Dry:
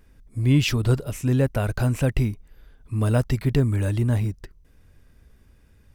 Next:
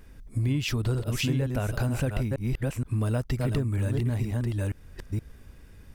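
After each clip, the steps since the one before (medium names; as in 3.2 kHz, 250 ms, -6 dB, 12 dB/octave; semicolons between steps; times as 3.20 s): chunks repeated in reverse 472 ms, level -5 dB; compression 5:1, threshold -30 dBFS, peak gain reduction 15.5 dB; trim +5 dB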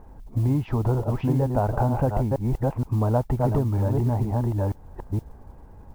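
resonant low-pass 860 Hz, resonance Q 4.9; modulation noise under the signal 32 dB; trim +3.5 dB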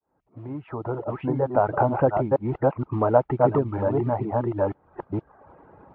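fade-in on the opening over 1.94 s; reverb removal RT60 0.66 s; cabinet simulation 190–2600 Hz, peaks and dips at 230 Hz -6 dB, 340 Hz +3 dB, 600 Hz +3 dB, 1.3 kHz +7 dB; trim +5 dB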